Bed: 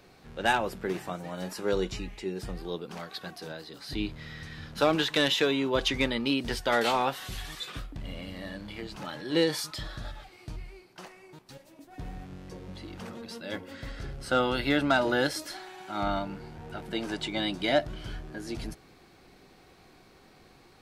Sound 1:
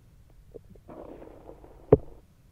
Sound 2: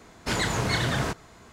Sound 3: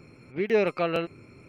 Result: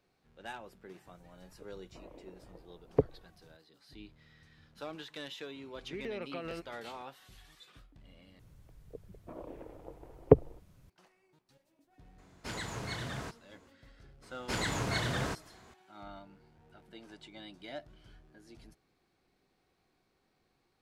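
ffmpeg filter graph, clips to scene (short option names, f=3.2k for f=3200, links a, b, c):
-filter_complex "[1:a]asplit=2[a][b];[2:a]asplit=2[c][d];[0:a]volume=-19dB[e];[a]acompressor=mode=upward:threshold=-48dB:ratio=2.5:attack=3.2:release=140:knee=2.83:detection=peak[f];[3:a]acompressor=threshold=-26dB:ratio=6:attack=3.2:release=140:knee=1:detection=peak[g];[e]asplit=2[h][i];[h]atrim=end=8.394[j];[b]atrim=end=2.51,asetpts=PTS-STARTPTS,volume=-2dB[k];[i]atrim=start=10.896[l];[f]atrim=end=2.51,asetpts=PTS-STARTPTS,volume=-9dB,afade=t=in:d=0.004:c=hsin,afade=t=out:st=2.506:d=0.004:c=hsin,adelay=1060[m];[g]atrim=end=1.48,asetpts=PTS-STARTPTS,volume=-10dB,afade=t=in:d=0.004:c=hsin,afade=t=out:st=1.476:d=0.004:c=hsin,adelay=5550[n];[c]atrim=end=1.52,asetpts=PTS-STARTPTS,volume=-13.5dB,afade=t=in:d=0.004:c=hsin,afade=t=out:st=1.516:d=0.004:c=hsin,adelay=12180[o];[d]atrim=end=1.52,asetpts=PTS-STARTPTS,volume=-7.5dB,afade=t=in:d=0.004:c=hsin,afade=t=out:st=1.516:d=0.004:c=hsin,adelay=14220[p];[j][k]acrossfade=d=0.004:c1=hsin:c2=hsin[q];[q][l]acrossfade=d=0.004:c1=hsin:c2=hsin[r];[r][m][n][o][p]amix=inputs=5:normalize=0"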